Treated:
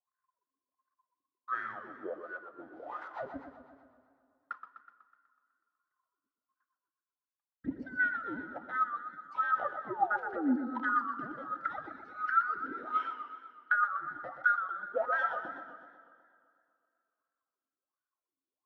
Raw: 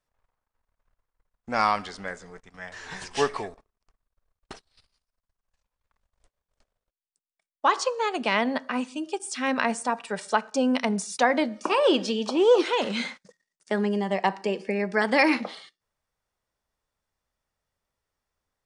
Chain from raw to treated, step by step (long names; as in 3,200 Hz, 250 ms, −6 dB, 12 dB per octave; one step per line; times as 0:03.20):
neighbouring bands swapped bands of 1,000 Hz
low-pass filter 4,100 Hz 12 dB per octave
tilt shelving filter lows +5 dB, about 880 Hz
leveller curve on the samples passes 2
downward compressor 3 to 1, threshold −25 dBFS, peak gain reduction 10.5 dB
sound drawn into the spectrogram fall, 0:09.63–0:10.56, 230–1,900 Hz −23 dBFS
LFO wah 1.4 Hz 270–1,500 Hz, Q 12
dense smooth reverb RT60 2.5 s, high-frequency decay 0.8×, DRR 14.5 dB
feedback echo with a swinging delay time 124 ms, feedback 59%, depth 133 cents, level −9 dB
level +3.5 dB